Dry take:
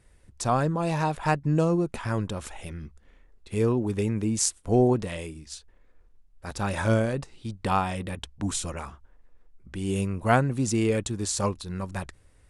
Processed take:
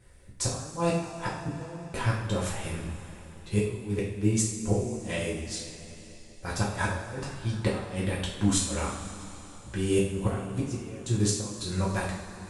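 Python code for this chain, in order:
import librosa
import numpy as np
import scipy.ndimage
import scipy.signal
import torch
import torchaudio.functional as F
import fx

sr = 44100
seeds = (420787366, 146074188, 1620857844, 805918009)

y = fx.gate_flip(x, sr, shuts_db=-17.0, range_db=-24)
y = fx.rev_double_slope(y, sr, seeds[0], early_s=0.56, late_s=3.9, knee_db=-15, drr_db=-6.0)
y = F.gain(torch.from_numpy(y), -1.5).numpy()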